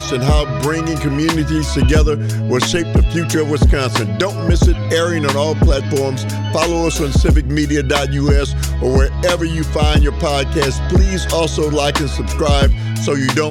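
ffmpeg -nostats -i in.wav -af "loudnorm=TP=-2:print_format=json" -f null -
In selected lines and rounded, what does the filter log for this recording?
"input_i" : "-15.8",
"input_tp" : "-1.4",
"input_lra" : "0.6",
"input_thresh" : "-25.8",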